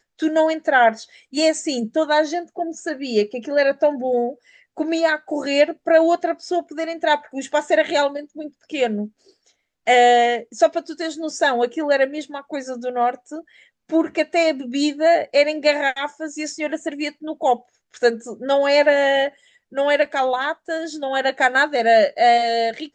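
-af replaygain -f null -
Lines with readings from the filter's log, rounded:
track_gain = -1.4 dB
track_peak = 0.487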